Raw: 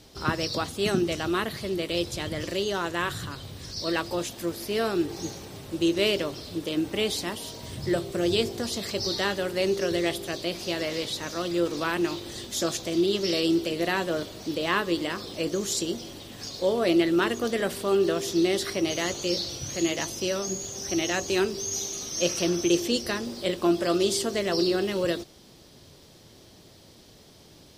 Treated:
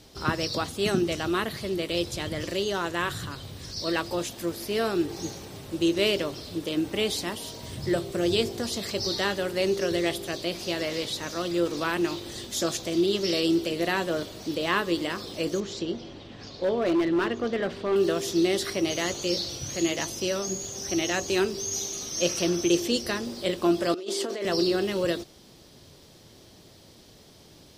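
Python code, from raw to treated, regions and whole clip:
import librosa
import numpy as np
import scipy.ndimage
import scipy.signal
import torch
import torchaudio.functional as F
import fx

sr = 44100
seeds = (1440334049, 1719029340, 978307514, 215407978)

y = fx.chain(x, sr, fx.air_absorb(metres=190.0),
    fx.clip_hard(threshold_db=-19.5), at=(15.6, 17.96))
y = fx.chain(y, sr, fx.highpass(hz=270.0, slope=24),
    fx.high_shelf(hz=4700.0, db=-9.5),
    fx.over_compress(threshold_db=-32.0, ratio=-1.0), at=(23.94, 24.45))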